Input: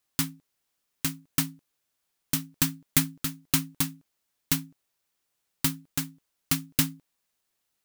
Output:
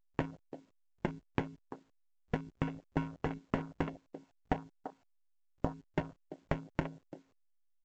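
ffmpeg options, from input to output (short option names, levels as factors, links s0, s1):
-filter_complex "[0:a]acrusher=bits=7:mix=0:aa=0.000001,asplit=3[s0][s1][s2];[s0]afade=t=out:st=2.36:d=0.02[s3];[s1]lowpass=f=1300:t=q:w=1.9,afade=t=in:st=2.36:d=0.02,afade=t=out:st=3.01:d=0.02[s4];[s2]afade=t=in:st=3.01:d=0.02[s5];[s3][s4][s5]amix=inputs=3:normalize=0,acrusher=samples=36:mix=1:aa=0.000001,agate=range=0.0562:threshold=0.01:ratio=16:detection=peak,asettb=1/sr,asplit=3[s6][s7][s8];[s6]atrim=end=3.874[s9];[s7]atrim=start=3.87:end=5.73,asetpts=PTS-STARTPTS,afade=t=in:d=0.004:c=qsin,afade=t=out:st=1.856:d=0.004:c=qsin,equalizer=f=780:w=1.9:g=9[s10];[s8]atrim=start=5.726[s11];[s9][s10]acrossfade=d=0.004:c1=hsin:c2=qsin[s12];[s12][s11]acrossfade=d=0.004:c1=qsin:c2=hsin,acompressor=threshold=0.0126:ratio=6,asplit=2[s13][s14];[s14]adelay=340,highpass=300,lowpass=3400,asoftclip=type=hard:threshold=0.0596,volume=0.355[s15];[s13][s15]amix=inputs=2:normalize=0,afwtdn=0.00282,volume=2.11" -ar 16000 -c:a pcm_alaw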